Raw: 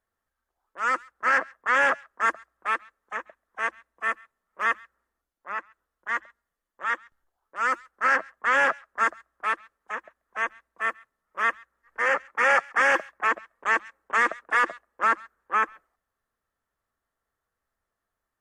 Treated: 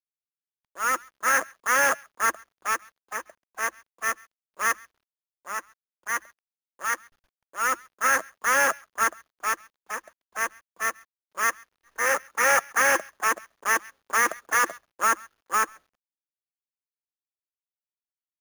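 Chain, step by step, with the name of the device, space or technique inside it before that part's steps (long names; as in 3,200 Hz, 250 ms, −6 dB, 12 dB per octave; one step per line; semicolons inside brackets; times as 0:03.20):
early companding sampler (sample-rate reduction 8,000 Hz, jitter 0%; log-companded quantiser 6 bits)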